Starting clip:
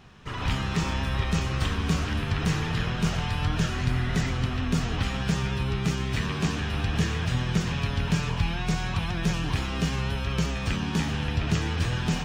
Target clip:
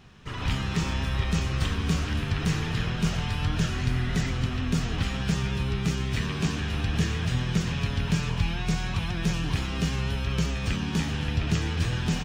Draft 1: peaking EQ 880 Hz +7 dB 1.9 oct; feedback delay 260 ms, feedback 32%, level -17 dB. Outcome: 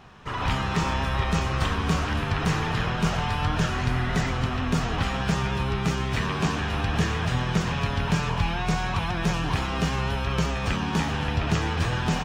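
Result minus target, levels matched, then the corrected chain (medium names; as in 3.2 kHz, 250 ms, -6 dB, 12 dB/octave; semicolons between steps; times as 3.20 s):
1 kHz band +7.5 dB
peaking EQ 880 Hz -3.5 dB 1.9 oct; feedback delay 260 ms, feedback 32%, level -17 dB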